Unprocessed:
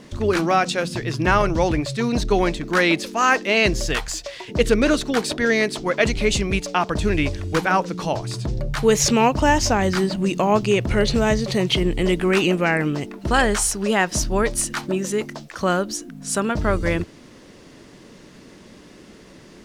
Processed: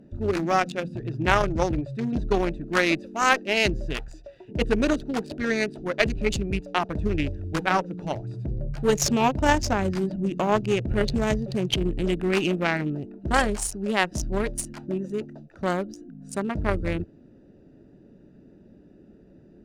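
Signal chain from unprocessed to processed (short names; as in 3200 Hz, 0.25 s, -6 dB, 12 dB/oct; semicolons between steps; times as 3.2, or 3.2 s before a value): Wiener smoothing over 41 samples; notch 480 Hz, Q 12; added harmonics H 2 -7 dB, 7 -31 dB, 8 -32 dB, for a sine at -4 dBFS; gain -2.5 dB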